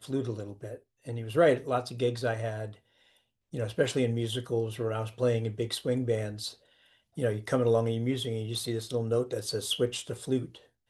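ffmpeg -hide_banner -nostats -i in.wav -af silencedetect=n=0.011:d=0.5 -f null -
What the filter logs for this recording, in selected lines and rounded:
silence_start: 2.70
silence_end: 3.53 | silence_duration: 0.83
silence_start: 6.52
silence_end: 7.17 | silence_duration: 0.66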